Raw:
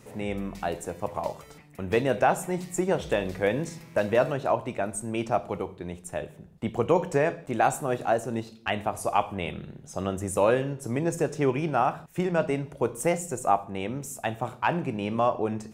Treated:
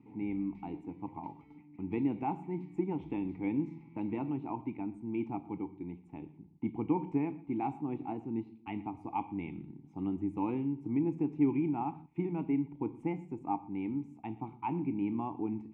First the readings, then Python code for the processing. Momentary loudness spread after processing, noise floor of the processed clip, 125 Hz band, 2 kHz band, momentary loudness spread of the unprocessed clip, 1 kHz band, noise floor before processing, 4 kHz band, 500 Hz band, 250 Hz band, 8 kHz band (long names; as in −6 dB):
11 LU, −57 dBFS, −8.0 dB, −19.5 dB, 10 LU, −11.5 dB, −50 dBFS, below −20 dB, −16.0 dB, −1.0 dB, below −40 dB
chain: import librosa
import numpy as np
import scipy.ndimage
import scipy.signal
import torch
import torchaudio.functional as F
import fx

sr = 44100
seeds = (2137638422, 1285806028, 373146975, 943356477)

p1 = fx.vowel_filter(x, sr, vowel='u')
p2 = fx.bass_treble(p1, sr, bass_db=15, treble_db=-14)
y = p2 + fx.echo_single(p2, sr, ms=119, db=-22.0, dry=0)